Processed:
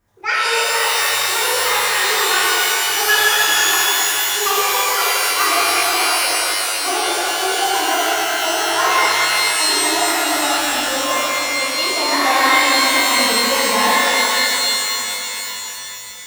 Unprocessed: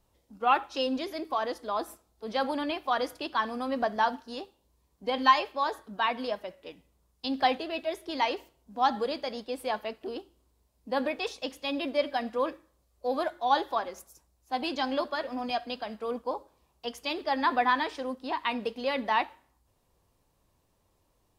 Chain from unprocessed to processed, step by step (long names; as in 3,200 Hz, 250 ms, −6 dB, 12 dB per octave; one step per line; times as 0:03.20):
gliding playback speed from 180% → 83%
reverb with rising layers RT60 3.7 s, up +12 semitones, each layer −2 dB, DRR −10.5 dB